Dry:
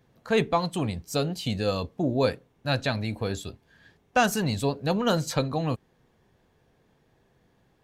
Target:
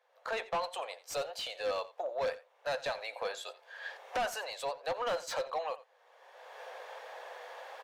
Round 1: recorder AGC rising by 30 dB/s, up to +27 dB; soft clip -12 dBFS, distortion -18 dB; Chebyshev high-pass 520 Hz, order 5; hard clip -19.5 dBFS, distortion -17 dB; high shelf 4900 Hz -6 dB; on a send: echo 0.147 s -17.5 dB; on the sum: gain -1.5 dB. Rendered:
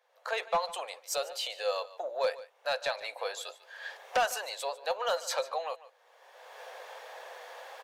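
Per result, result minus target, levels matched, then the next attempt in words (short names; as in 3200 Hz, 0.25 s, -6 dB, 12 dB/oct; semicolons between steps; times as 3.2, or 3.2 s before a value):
echo 60 ms late; hard clip: distortion -9 dB; 8000 Hz band +3.0 dB
recorder AGC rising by 30 dB/s, up to +27 dB; soft clip -12 dBFS, distortion -18 dB; Chebyshev high-pass 520 Hz, order 5; hard clip -19.5 dBFS, distortion -17 dB; high shelf 4900 Hz -6 dB; on a send: echo 87 ms -17.5 dB; on the sum: gain -1.5 dB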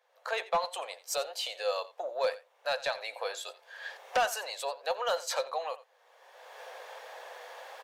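hard clip: distortion -9 dB; 8000 Hz band +3.0 dB
recorder AGC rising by 30 dB/s, up to +27 dB; soft clip -12 dBFS, distortion -18 dB; Chebyshev high-pass 520 Hz, order 5; hard clip -27 dBFS, distortion -8 dB; high shelf 4900 Hz -6 dB; on a send: echo 87 ms -17.5 dB; on the sum: gain -1.5 dB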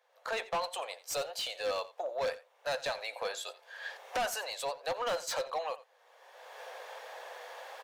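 8000 Hz band +4.5 dB
recorder AGC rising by 30 dB/s, up to +27 dB; soft clip -12 dBFS, distortion -18 dB; Chebyshev high-pass 520 Hz, order 5; hard clip -27 dBFS, distortion -8 dB; high shelf 4900 Hz -14 dB; on a send: echo 87 ms -17.5 dB; on the sum: gain -1.5 dB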